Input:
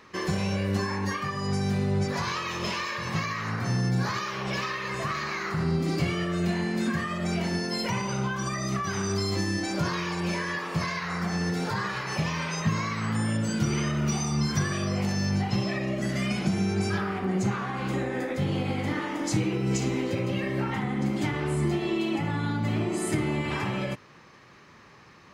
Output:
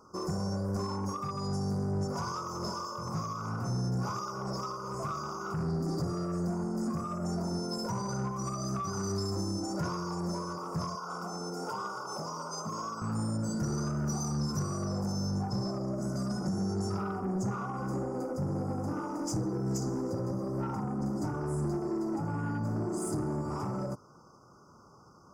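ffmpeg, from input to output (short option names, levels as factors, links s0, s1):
-filter_complex "[0:a]asettb=1/sr,asplit=3[s0][s1][s2];[s0]atrim=end=10.954[s3];[s1]atrim=start=10.95:end=13.02,asetpts=PTS-STARTPTS,afade=t=in:d=0.004:c=qsin,afade=t=out:st=2.066:d=0.004:c=qsin,highpass=310[s4];[s2]atrim=start=13.016[s5];[s3][s4]acrossfade=d=0.004:c1=hsin:c2=qsin[s6];[s6][s5]acrossfade=d=0.004:c1=qsin:c2=hsin,afftfilt=real='re*(1-between(b*sr/4096,1500,4700))':imag='im*(1-between(b*sr/4096,1500,4700))':win_size=4096:overlap=0.75,asoftclip=type=tanh:threshold=0.0708,volume=0.708"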